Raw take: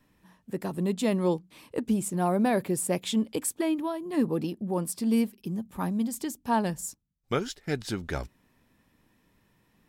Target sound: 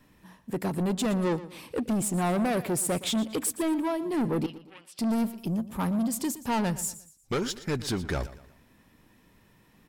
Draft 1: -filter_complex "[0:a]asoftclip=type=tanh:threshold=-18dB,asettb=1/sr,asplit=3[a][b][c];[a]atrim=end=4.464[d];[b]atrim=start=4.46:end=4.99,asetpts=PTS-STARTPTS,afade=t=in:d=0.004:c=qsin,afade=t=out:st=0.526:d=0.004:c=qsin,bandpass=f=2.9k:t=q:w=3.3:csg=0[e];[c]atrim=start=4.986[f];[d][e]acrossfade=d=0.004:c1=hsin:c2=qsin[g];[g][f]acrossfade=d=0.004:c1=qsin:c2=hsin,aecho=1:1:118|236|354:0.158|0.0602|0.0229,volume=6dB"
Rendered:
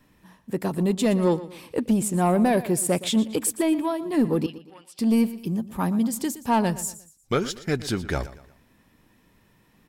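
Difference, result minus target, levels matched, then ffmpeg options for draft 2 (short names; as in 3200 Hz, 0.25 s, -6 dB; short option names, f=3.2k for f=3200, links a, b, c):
soft clip: distortion -12 dB
-filter_complex "[0:a]asoftclip=type=tanh:threshold=-29.5dB,asettb=1/sr,asplit=3[a][b][c];[a]atrim=end=4.464[d];[b]atrim=start=4.46:end=4.99,asetpts=PTS-STARTPTS,afade=t=in:d=0.004:c=qsin,afade=t=out:st=0.526:d=0.004:c=qsin,bandpass=f=2.9k:t=q:w=3.3:csg=0[e];[c]atrim=start=4.986[f];[d][e]acrossfade=d=0.004:c1=hsin:c2=qsin[g];[g][f]acrossfade=d=0.004:c1=qsin:c2=hsin,aecho=1:1:118|236|354:0.158|0.0602|0.0229,volume=6dB"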